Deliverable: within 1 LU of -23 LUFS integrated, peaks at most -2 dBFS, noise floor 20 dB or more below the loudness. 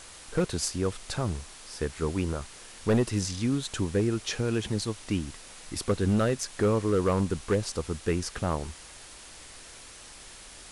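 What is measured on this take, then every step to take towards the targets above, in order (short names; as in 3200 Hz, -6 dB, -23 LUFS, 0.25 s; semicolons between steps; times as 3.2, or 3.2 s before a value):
clipped 0.7%; flat tops at -18.0 dBFS; noise floor -48 dBFS; noise floor target -50 dBFS; loudness -29.5 LUFS; peak -18.0 dBFS; loudness target -23.0 LUFS
-> clip repair -18 dBFS; denoiser 6 dB, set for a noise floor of -48 dBFS; gain +6.5 dB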